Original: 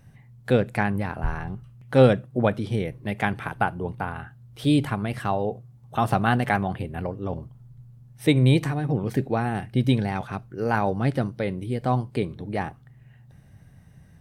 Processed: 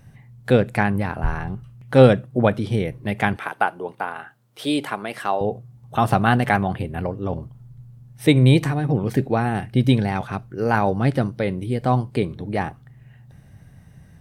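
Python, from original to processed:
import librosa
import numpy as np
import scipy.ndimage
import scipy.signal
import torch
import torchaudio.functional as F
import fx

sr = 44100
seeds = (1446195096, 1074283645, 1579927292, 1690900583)

y = fx.highpass(x, sr, hz=380.0, slope=12, at=(3.36, 5.41))
y = y * 10.0 ** (4.0 / 20.0)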